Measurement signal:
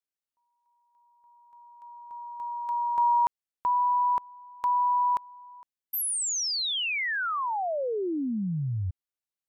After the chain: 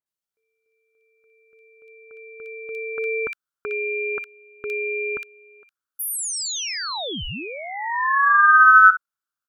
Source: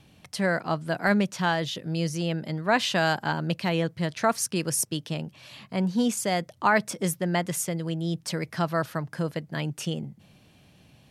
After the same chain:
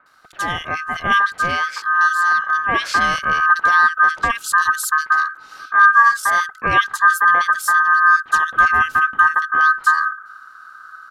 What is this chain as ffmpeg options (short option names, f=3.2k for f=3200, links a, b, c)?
-filter_complex "[0:a]asubboost=boost=10.5:cutoff=230,aeval=exprs='val(0)*sin(2*PI*1400*n/s)':c=same,acrossover=split=2100[a][b];[b]adelay=60[c];[a][c]amix=inputs=2:normalize=0,volume=5dB"